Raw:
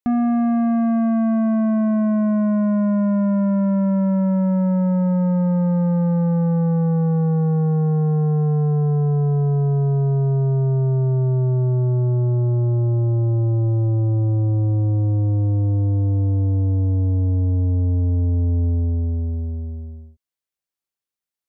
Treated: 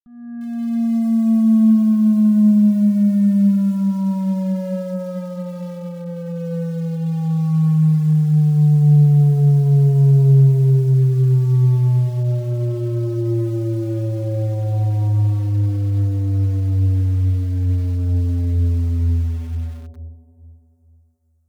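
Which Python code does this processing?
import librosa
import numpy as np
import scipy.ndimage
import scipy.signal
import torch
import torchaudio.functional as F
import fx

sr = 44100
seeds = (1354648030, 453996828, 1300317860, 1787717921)

p1 = fx.fade_in_head(x, sr, length_s=2.18)
p2 = fx.low_shelf(p1, sr, hz=340.0, db=7.0)
p3 = p2 + 0.66 * np.pad(p2, (int(5.4 * sr / 1000.0), 0))[:len(p2)]
p4 = fx.rider(p3, sr, range_db=4, speed_s=0.5)
p5 = fx.phaser_stages(p4, sr, stages=6, low_hz=190.0, high_hz=1700.0, hz=0.13, feedback_pct=45)
p6 = p5 + fx.echo_feedback(p5, sr, ms=437, feedback_pct=42, wet_db=-14.5, dry=0)
p7 = fx.echo_crushed(p6, sr, ms=95, feedback_pct=55, bits=5, wet_db=-15.0)
y = p7 * librosa.db_to_amplitude(-3.5)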